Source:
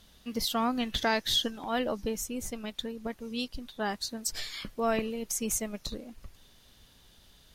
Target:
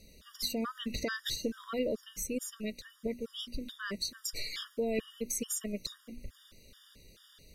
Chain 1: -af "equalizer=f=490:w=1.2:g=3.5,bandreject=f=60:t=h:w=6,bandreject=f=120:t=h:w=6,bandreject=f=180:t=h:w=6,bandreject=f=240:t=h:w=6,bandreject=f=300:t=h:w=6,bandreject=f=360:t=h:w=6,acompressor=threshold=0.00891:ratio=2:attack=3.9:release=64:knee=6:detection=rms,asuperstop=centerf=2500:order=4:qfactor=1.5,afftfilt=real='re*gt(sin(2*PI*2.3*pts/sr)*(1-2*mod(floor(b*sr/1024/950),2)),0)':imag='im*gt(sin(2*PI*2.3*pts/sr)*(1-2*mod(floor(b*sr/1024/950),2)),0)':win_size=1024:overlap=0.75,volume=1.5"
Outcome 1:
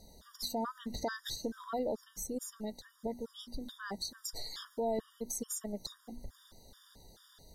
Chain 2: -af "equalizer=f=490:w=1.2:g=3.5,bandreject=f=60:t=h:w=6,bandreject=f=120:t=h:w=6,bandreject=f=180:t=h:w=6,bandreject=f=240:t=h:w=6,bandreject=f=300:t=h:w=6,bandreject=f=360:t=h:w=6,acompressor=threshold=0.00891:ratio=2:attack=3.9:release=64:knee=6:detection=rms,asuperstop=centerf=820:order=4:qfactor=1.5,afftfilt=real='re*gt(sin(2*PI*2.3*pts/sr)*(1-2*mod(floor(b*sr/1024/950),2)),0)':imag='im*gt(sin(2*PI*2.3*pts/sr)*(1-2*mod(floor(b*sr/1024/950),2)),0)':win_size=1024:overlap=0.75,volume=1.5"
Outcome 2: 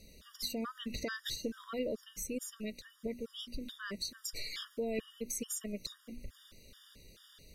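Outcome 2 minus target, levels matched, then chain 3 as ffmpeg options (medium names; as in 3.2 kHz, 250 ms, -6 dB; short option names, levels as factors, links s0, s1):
compression: peak gain reduction +3.5 dB
-af "equalizer=f=490:w=1.2:g=3.5,bandreject=f=60:t=h:w=6,bandreject=f=120:t=h:w=6,bandreject=f=180:t=h:w=6,bandreject=f=240:t=h:w=6,bandreject=f=300:t=h:w=6,bandreject=f=360:t=h:w=6,acompressor=threshold=0.0211:ratio=2:attack=3.9:release=64:knee=6:detection=rms,asuperstop=centerf=820:order=4:qfactor=1.5,afftfilt=real='re*gt(sin(2*PI*2.3*pts/sr)*(1-2*mod(floor(b*sr/1024/950),2)),0)':imag='im*gt(sin(2*PI*2.3*pts/sr)*(1-2*mod(floor(b*sr/1024/950),2)),0)':win_size=1024:overlap=0.75,volume=1.5"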